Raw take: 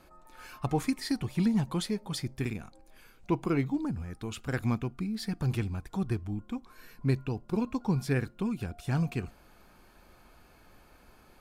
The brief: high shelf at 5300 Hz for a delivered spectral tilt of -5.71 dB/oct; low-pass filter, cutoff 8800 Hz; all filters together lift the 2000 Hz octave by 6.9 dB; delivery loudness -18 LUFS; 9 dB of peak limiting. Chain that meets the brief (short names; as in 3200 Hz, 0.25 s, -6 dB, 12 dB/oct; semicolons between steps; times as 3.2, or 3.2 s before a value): LPF 8800 Hz; bell 2000 Hz +9 dB; high shelf 5300 Hz -3 dB; gain +16.5 dB; limiter -6.5 dBFS